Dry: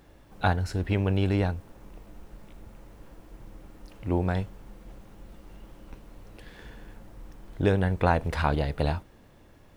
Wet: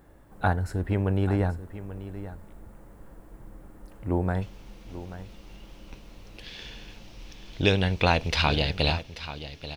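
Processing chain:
flat-topped bell 3,800 Hz −8 dB, from 0:04.41 +8.5 dB, from 0:06.43 +15 dB
single-tap delay 835 ms −13.5 dB

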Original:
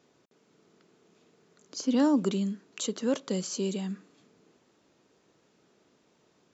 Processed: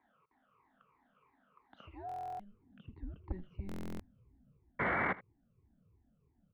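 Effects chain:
rippled gain that drifts along the octave scale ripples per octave 0.96, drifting −3 Hz, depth 22 dB
dynamic equaliser 2,200 Hz, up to +6 dB, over −52 dBFS, Q 2
0:01.87–0:03.22: downward compressor 6 to 1, threshold −33 dBFS, peak gain reduction 18 dB
band-pass filter sweep 1,300 Hz → 250 Hz, 0:01.71–0:03.10
0:04.79–0:05.13: sound drawn into the spectrogram noise 240–2,500 Hz −30 dBFS
soft clipping −23.5 dBFS, distortion −18 dB
on a send: single-tap delay 80 ms −19 dB
on the sum: single-sideband voice off tune −190 Hz 240–3,400 Hz
buffer that repeats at 0:02.07/0:03.67, samples 1,024, times 13
level −1 dB

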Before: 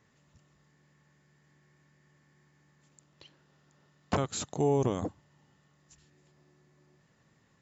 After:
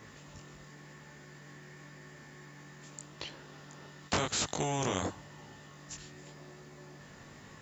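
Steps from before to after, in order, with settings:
chorus effect 0.9 Hz, delay 18.5 ms, depth 3 ms
every bin compressed towards the loudest bin 2 to 1
level +4.5 dB

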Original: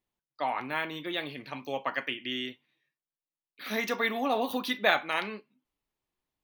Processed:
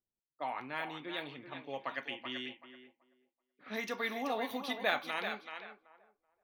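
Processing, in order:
feedback echo with a high-pass in the loop 381 ms, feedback 29%, high-pass 440 Hz, level −7 dB
low-pass that shuts in the quiet parts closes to 590 Hz, open at −27.5 dBFS
level −7.5 dB

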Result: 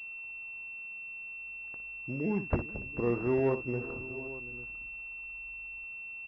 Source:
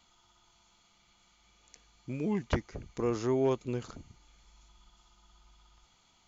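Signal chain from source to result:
on a send: multi-tap delay 59/447/732/848 ms −11/−18.5/−18/−17 dB
on the sum: switching amplifier with a slow clock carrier 2,700 Hz

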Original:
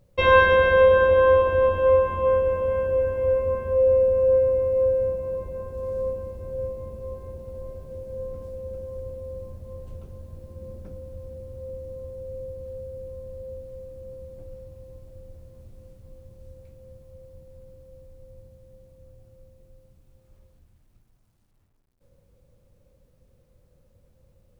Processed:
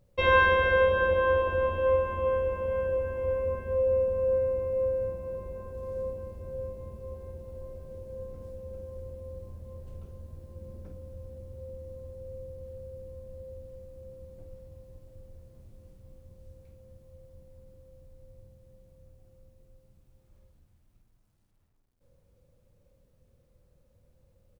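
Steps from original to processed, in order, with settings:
double-tracking delay 49 ms −8 dB
level −5 dB

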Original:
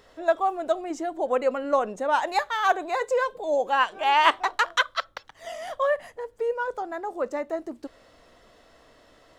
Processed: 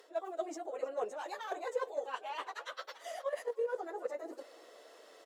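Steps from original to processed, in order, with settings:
high-shelf EQ 4,400 Hz +8 dB
harmonic generator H 4 −25 dB, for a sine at −3 dBFS
reversed playback
downward compressor 5 to 1, threshold −37 dBFS, peak gain reduction 20.5 dB
reversed playback
four-pole ladder high-pass 360 Hz, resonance 45%
time stretch by phase vocoder 0.56×
repeating echo 317 ms, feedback 48%, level −20 dB
in parallel at 0 dB: output level in coarse steps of 15 dB
on the sum: level +5.5 dB

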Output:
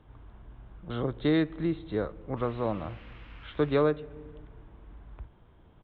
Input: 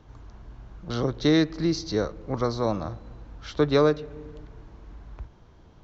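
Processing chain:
downsampling to 8,000 Hz
0:02.36–0:03.82: noise in a band 970–3,000 Hz −51 dBFS
level −4.5 dB

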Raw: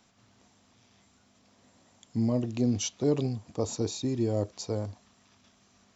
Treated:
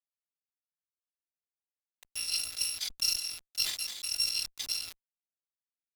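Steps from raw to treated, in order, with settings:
samples in bit-reversed order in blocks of 256 samples
parametric band 860 Hz −6 dB 1.4 octaves
notch filter 1,100 Hz
in parallel at +0.5 dB: downward compressor 5 to 1, threshold −39 dBFS, peak gain reduction 16.5 dB
on the sum: band-pass filter sweep 1,100 Hz → 4,000 Hz, 0:01.54–0:02.29
centre clipping without the shift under −48.5 dBFS
harmonic generator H 2 −18 dB, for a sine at −23 dBFS
transient designer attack +6 dB, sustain −5 dB
level that may fall only so fast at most 79 dB per second
level +3.5 dB

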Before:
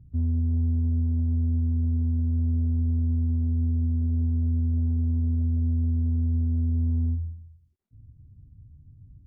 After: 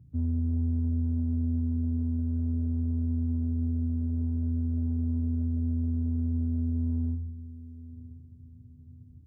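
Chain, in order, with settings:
high-pass filter 93 Hz
on a send: delay with a low-pass on its return 1,027 ms, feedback 33%, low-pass 440 Hz, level −14.5 dB

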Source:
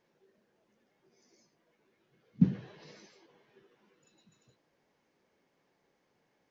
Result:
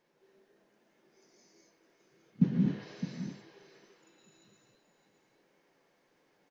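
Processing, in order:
parametric band 76 Hz −12.5 dB 0.91 octaves
single-tap delay 611 ms −11.5 dB
reverb whose tail is shaped and stops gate 280 ms rising, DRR −2.5 dB

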